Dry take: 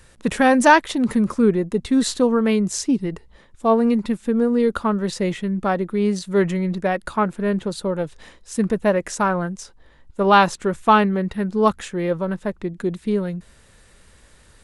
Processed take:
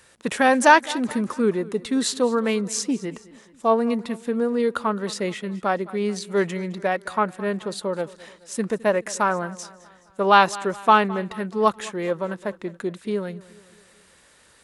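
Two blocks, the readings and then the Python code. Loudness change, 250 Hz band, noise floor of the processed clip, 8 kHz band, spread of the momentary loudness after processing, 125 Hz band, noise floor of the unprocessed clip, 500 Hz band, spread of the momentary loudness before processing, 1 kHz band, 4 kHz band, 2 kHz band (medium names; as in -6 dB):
-2.5 dB, -6.0 dB, -56 dBFS, 0.0 dB, 14 LU, -7.5 dB, -52 dBFS, -2.5 dB, 11 LU, -0.5 dB, 0.0 dB, 0.0 dB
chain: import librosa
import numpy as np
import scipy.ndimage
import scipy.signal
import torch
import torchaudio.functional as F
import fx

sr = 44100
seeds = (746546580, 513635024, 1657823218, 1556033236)

p1 = fx.highpass(x, sr, hz=400.0, slope=6)
y = p1 + fx.echo_feedback(p1, sr, ms=213, feedback_pct=50, wet_db=-20.0, dry=0)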